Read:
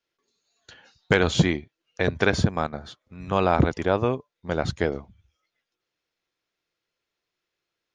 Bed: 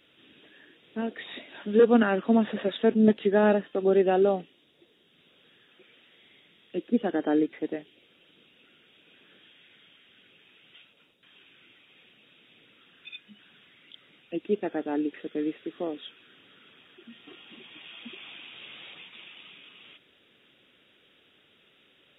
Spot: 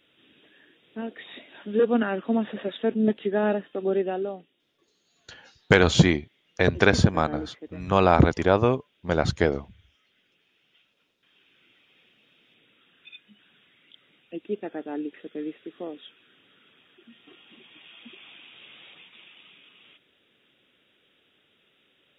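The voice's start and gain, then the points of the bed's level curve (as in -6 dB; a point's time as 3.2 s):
4.60 s, +2.5 dB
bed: 3.95 s -2.5 dB
4.34 s -10 dB
10.81 s -10 dB
11.78 s -3.5 dB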